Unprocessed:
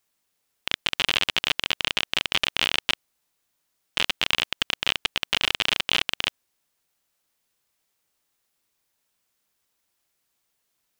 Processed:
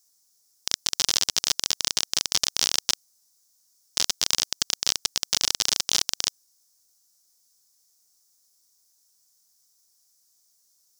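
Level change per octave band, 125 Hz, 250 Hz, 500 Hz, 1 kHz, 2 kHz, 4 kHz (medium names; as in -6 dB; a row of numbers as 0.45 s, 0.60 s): -4.5 dB, -4.5 dB, -4.5 dB, -5.5 dB, -10.0 dB, -1.0 dB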